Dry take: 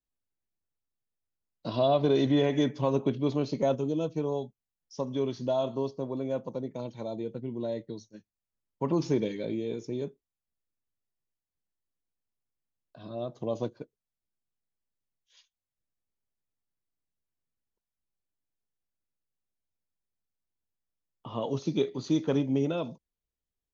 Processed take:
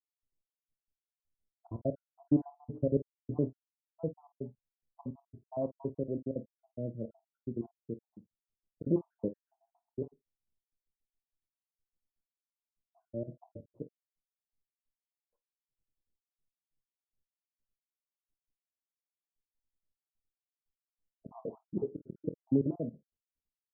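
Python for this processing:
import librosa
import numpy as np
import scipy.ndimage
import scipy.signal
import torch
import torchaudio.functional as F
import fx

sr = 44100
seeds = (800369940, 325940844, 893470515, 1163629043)

p1 = fx.spec_dropout(x, sr, seeds[0], share_pct=75)
p2 = scipy.ndimage.gaussian_filter1d(p1, 13.0, mode='constant')
p3 = p2 + fx.room_early_taps(p2, sr, ms=(26, 49), db=(-13.5, -15.5), dry=0)
y = p3 * 10.0 ** (2.0 / 20.0)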